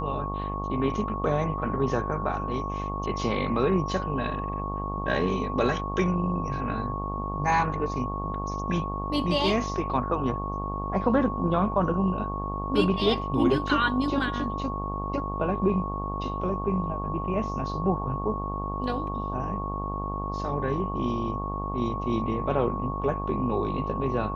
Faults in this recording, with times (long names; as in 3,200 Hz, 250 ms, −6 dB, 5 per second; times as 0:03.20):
mains buzz 50 Hz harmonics 24 −33 dBFS
whistle 1,100 Hz −33 dBFS